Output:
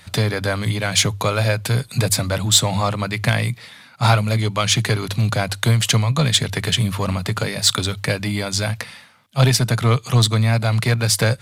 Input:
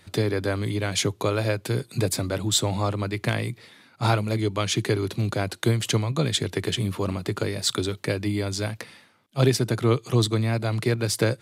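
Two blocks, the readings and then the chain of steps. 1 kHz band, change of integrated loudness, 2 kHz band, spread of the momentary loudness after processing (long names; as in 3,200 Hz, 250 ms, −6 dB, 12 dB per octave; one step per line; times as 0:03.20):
+7.0 dB, +6.5 dB, +8.0 dB, 7 LU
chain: in parallel at −6 dB: hard clipping −21 dBFS, distortion −9 dB
on the sum: parametric band 350 Hz −14.5 dB 0.82 octaves
mains-hum notches 50/100 Hz
level +6 dB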